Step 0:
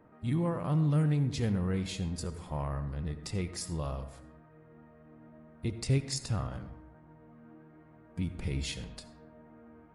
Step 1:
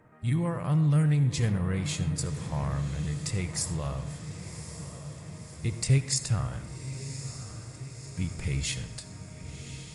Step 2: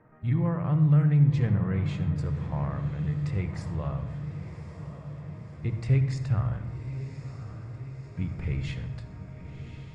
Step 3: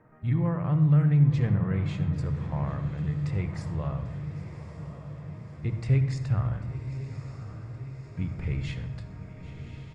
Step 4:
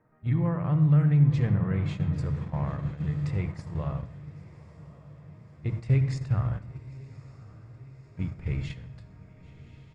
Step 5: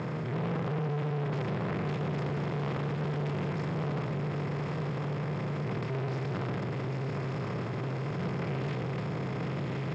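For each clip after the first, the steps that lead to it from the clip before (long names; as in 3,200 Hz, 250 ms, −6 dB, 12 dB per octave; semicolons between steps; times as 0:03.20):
octave-band graphic EQ 125/250/2,000/8,000 Hz +7/−4/+6/+11 dB; on a send: feedback delay with all-pass diffusion 1,102 ms, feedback 61%, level −11 dB
low-pass filter 2,000 Hz 12 dB per octave; on a send at −15 dB: low-shelf EQ 110 Hz +11.5 dB + convolution reverb RT60 0.85 s, pre-delay 39 ms
single-tap delay 793 ms −18.5 dB
noise gate −31 dBFS, range −8 dB
compressor on every frequency bin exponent 0.2; soft clipping −24.5 dBFS, distortion −8 dB; band-pass filter 180–4,600 Hz; level −1 dB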